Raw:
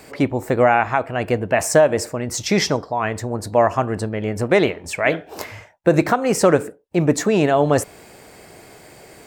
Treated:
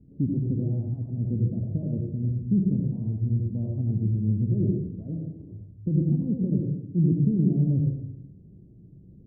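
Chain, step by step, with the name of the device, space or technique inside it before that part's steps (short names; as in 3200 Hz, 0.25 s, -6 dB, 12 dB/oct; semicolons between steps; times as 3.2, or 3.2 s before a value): 1.17–1.83 steep low-pass 1700 Hz 72 dB/oct; club heard from the street (limiter -7.5 dBFS, peak gain reduction 5 dB; LPF 220 Hz 24 dB/oct; reverb RT60 0.75 s, pre-delay 73 ms, DRR 0.5 dB)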